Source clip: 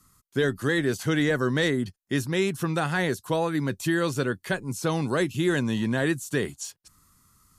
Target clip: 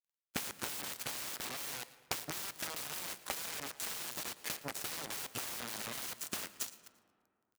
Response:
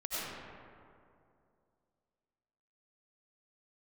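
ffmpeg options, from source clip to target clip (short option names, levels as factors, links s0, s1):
-filter_complex "[0:a]aeval=exprs='val(0)+0.00158*sin(2*PI*1400*n/s)':c=same,acrossover=split=280[s0][s1];[s0]acompressor=threshold=0.0126:ratio=6[s2];[s2][s1]amix=inputs=2:normalize=0,aeval=exprs='(mod(25.1*val(0)+1,2)-1)/25.1':c=same,acompressor=threshold=0.00398:ratio=5,aeval=exprs='val(0)+0.000224*(sin(2*PI*50*n/s)+sin(2*PI*2*50*n/s)/2+sin(2*PI*3*50*n/s)/3+sin(2*PI*4*50*n/s)/4+sin(2*PI*5*50*n/s)/5)':c=same,acrusher=bits=6:mix=0:aa=0.5,highpass=f=150:p=1,aecho=1:1:114|228|342:0.106|0.0424|0.0169,asplit=2[s3][s4];[1:a]atrim=start_sample=2205[s5];[s4][s5]afir=irnorm=-1:irlink=0,volume=0.0944[s6];[s3][s6]amix=inputs=2:normalize=0,volume=3.76"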